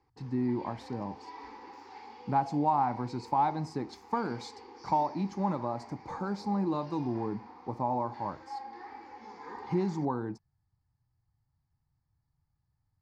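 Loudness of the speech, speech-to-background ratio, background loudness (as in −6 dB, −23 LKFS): −33.0 LKFS, 15.5 dB, −48.5 LKFS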